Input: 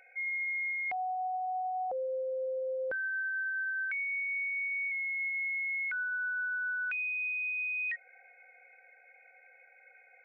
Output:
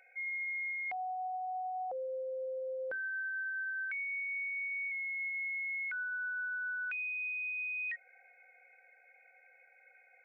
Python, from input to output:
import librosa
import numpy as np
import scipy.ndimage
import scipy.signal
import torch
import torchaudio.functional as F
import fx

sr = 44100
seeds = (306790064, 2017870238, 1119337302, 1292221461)

y = fx.low_shelf(x, sr, hz=210.0, db=-5.0)
y = fx.hum_notches(y, sr, base_hz=50, count=9)
y = fx.quant_float(y, sr, bits=8, at=(4.83, 5.75))
y = F.gain(torch.from_numpy(y), -3.5).numpy()